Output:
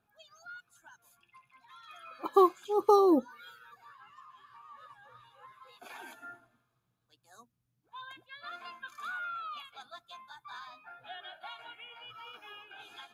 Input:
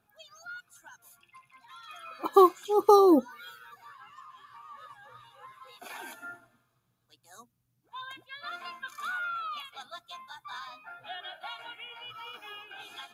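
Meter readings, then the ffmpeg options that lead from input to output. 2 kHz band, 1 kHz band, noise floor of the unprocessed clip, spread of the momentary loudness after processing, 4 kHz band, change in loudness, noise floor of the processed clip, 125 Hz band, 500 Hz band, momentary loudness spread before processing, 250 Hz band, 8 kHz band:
−4.5 dB, −4.0 dB, −75 dBFS, 23 LU, −5.5 dB, −3.5 dB, −79 dBFS, can't be measured, −4.0 dB, 23 LU, −4.0 dB, −7.5 dB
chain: -af "highshelf=frequency=5900:gain=-6,volume=-4dB"

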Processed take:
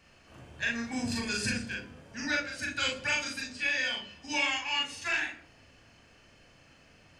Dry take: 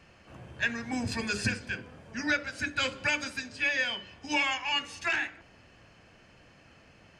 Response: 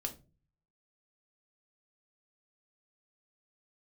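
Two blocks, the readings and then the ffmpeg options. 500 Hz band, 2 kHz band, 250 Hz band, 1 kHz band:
−2.5 dB, −1.5 dB, −1.0 dB, −2.5 dB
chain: -filter_complex "[0:a]highshelf=frequency=3100:gain=7.5,asplit=2[link_01][link_02];[1:a]atrim=start_sample=2205,adelay=39[link_03];[link_02][link_03]afir=irnorm=-1:irlink=0,volume=0.5dB[link_04];[link_01][link_04]amix=inputs=2:normalize=0,volume=-6.5dB"

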